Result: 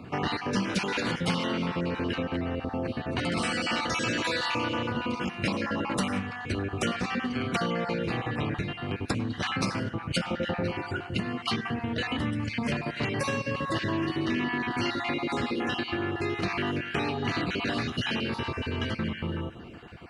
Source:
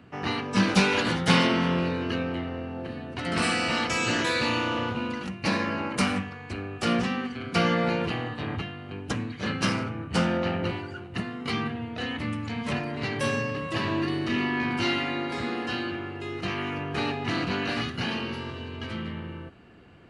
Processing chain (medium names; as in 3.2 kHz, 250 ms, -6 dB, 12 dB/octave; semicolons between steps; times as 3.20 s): random holes in the spectrogram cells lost 27%; compression 6:1, threshold -35 dBFS, peak gain reduction 18 dB; on a send: feedback echo behind a low-pass 101 ms, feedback 58%, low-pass 2.6 kHz, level -17 dB; on the sum: trim +8.5 dB